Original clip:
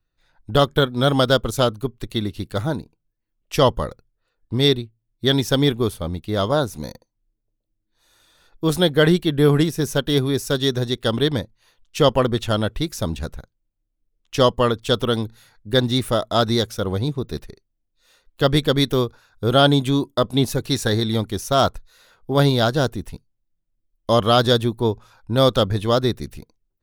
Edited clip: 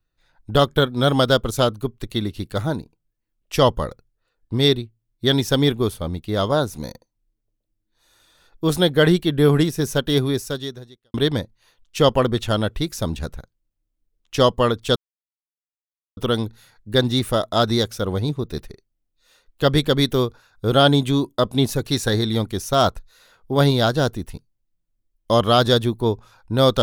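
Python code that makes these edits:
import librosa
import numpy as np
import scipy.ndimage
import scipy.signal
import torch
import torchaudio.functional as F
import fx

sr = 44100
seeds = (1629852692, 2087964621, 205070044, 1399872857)

y = fx.edit(x, sr, fx.fade_out_span(start_s=10.3, length_s=0.84, curve='qua'),
    fx.insert_silence(at_s=14.96, length_s=1.21), tone=tone)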